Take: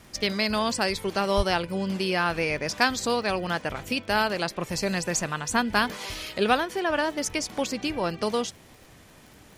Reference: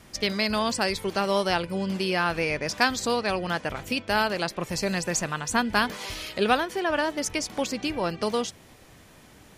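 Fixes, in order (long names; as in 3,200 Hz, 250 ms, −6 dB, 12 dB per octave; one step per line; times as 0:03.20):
click removal
0:01.36–0:01.48: high-pass filter 140 Hz 24 dB per octave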